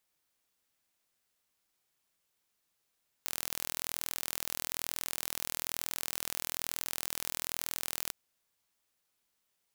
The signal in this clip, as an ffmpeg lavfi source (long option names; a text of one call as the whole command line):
ffmpeg -f lavfi -i "aevalsrc='0.398*eq(mod(n,1073),0)':duration=4.86:sample_rate=44100" out.wav